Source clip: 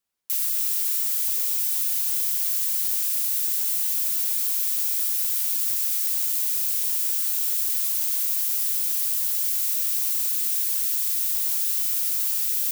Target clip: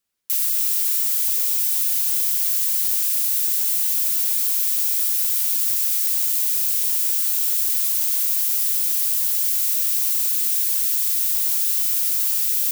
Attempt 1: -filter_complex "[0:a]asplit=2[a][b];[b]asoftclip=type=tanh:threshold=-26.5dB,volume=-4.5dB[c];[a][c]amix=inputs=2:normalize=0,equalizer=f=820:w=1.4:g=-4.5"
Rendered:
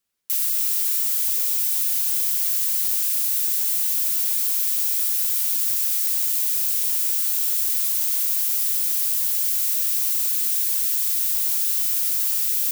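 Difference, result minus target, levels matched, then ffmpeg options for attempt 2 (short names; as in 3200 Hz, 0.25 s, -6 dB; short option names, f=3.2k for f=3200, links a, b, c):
soft clip: distortion +12 dB
-filter_complex "[0:a]asplit=2[a][b];[b]asoftclip=type=tanh:threshold=-15.5dB,volume=-4.5dB[c];[a][c]amix=inputs=2:normalize=0,equalizer=f=820:w=1.4:g=-4.5"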